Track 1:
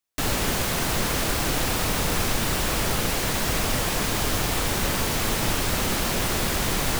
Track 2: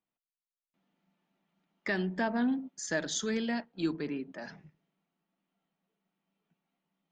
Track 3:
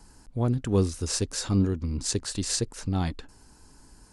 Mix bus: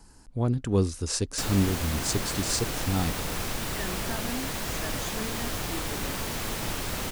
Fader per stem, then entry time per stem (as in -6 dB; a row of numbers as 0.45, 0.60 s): -7.5, -7.0, -0.5 dB; 1.20, 1.90, 0.00 s